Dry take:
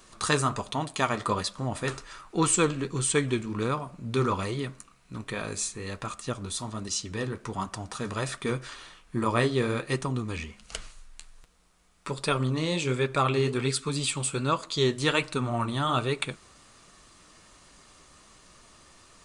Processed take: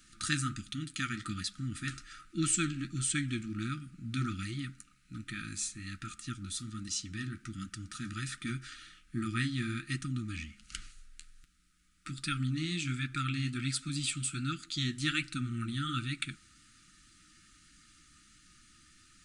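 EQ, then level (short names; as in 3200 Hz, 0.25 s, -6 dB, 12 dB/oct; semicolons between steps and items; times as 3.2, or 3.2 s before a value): dynamic EQ 1200 Hz, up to -5 dB, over -42 dBFS, Q 4; brick-wall FIR band-stop 350–1200 Hz; -5.0 dB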